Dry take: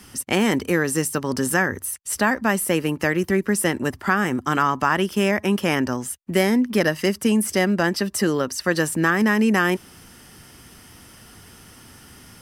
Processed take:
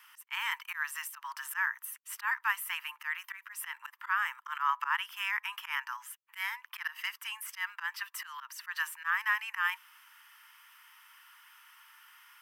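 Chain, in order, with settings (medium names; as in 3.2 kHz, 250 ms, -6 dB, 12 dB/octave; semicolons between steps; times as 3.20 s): steep high-pass 910 Hz 96 dB/octave; high-order bell 6.5 kHz -12 dB; slow attack 105 ms; trim -5.5 dB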